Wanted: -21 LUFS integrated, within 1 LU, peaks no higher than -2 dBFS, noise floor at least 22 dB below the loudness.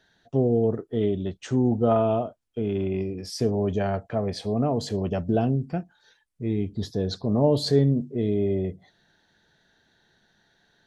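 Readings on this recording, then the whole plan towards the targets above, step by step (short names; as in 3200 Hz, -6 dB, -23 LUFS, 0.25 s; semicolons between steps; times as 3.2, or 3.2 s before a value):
loudness -25.5 LUFS; peak -8.5 dBFS; loudness target -21.0 LUFS
-> gain +4.5 dB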